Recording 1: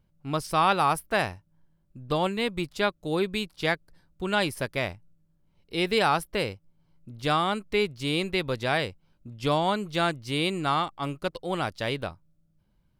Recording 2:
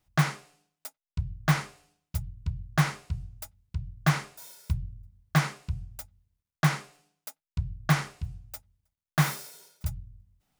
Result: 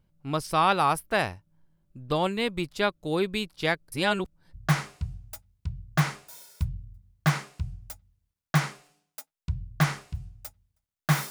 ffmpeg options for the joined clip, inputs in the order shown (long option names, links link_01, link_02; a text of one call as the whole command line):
ffmpeg -i cue0.wav -i cue1.wav -filter_complex "[0:a]apad=whole_dur=11.3,atrim=end=11.3,asplit=2[link_01][link_02];[link_01]atrim=end=3.922[link_03];[link_02]atrim=start=3.918:end=4.542,asetpts=PTS-STARTPTS,areverse[link_04];[1:a]atrim=start=2.628:end=9.39[link_05];[link_03][link_04]acrossfade=duration=0.004:curve1=hsin:curve2=hsin[link_06];[link_06][link_05]acrossfade=duration=0.004:curve1=hsin:curve2=hsin" out.wav